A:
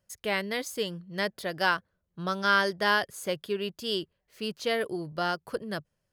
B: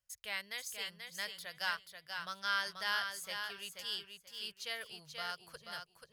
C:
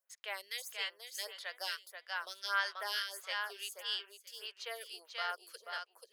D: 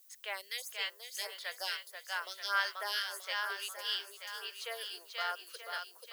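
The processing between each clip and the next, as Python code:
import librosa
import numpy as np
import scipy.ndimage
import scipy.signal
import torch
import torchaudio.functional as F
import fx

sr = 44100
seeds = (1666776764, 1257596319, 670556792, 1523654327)

y1 = fx.tone_stack(x, sr, knobs='10-0-10')
y1 = fx.echo_feedback(y1, sr, ms=484, feedback_pct=22, wet_db=-6.0)
y1 = F.gain(torch.from_numpy(y1), -4.5).numpy()
y2 = scipy.signal.sosfilt(scipy.signal.butter(6, 380.0, 'highpass', fs=sr, output='sos'), y1)
y2 = fx.stagger_phaser(y2, sr, hz=1.6)
y2 = F.gain(torch.from_numpy(y2), 5.0).numpy()
y3 = fx.dmg_noise_colour(y2, sr, seeds[0], colour='violet', level_db=-63.0)
y3 = fx.echo_thinned(y3, sr, ms=931, feedback_pct=25, hz=420.0, wet_db=-9.0)
y3 = F.gain(torch.from_numpy(y3), 1.5).numpy()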